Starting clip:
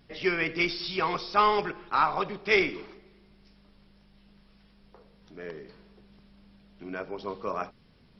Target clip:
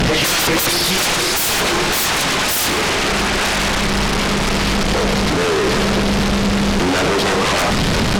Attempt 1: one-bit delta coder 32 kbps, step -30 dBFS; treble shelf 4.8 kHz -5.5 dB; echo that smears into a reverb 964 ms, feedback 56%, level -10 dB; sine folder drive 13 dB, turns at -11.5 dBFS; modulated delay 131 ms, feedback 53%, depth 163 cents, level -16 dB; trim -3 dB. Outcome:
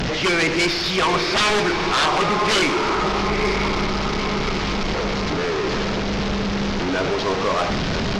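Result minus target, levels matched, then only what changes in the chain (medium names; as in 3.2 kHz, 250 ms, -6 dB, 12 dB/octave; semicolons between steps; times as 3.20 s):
sine folder: distortion -8 dB
change: sine folder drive 24 dB, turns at -11.5 dBFS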